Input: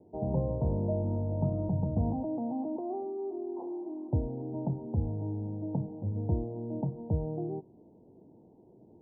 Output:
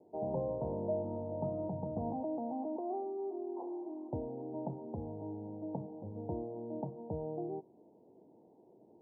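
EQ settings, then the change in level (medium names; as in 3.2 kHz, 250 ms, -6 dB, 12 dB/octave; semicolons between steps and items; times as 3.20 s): band-pass filter 770 Hz, Q 0.69; 0.0 dB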